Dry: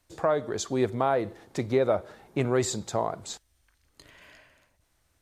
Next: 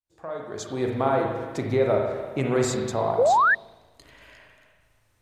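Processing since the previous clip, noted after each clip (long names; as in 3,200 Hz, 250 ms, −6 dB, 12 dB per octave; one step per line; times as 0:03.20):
fade in at the beginning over 1.03 s
spring reverb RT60 1.4 s, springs 37/55 ms, chirp 55 ms, DRR 0 dB
sound drawn into the spectrogram rise, 0:03.18–0:03.55, 440–1,900 Hz −18 dBFS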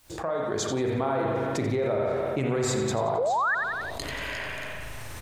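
brickwall limiter −16.5 dBFS, peak gain reduction 6 dB
on a send: repeating echo 89 ms, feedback 43%, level −11 dB
on the sum: envelope flattener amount 70%
level −4.5 dB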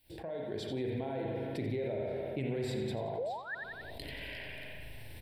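phaser with its sweep stopped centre 2,900 Hz, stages 4
level −7.5 dB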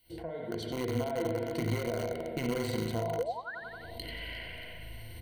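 in parallel at −8 dB: bit reduction 5 bits
on the sum: EQ curve with evenly spaced ripples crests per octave 1.9, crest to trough 13 dB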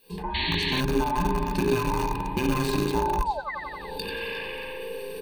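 frequency inversion band by band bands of 500 Hz
sound drawn into the spectrogram noise, 0:00.34–0:00.81, 1,600–4,500 Hz −37 dBFS
level +8 dB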